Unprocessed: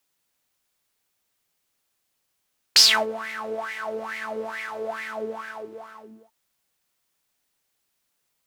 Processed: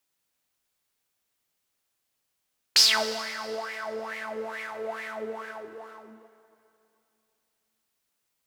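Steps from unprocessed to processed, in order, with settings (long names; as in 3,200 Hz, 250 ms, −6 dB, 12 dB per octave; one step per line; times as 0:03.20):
dense smooth reverb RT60 2.8 s, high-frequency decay 0.85×, DRR 10 dB
level −4 dB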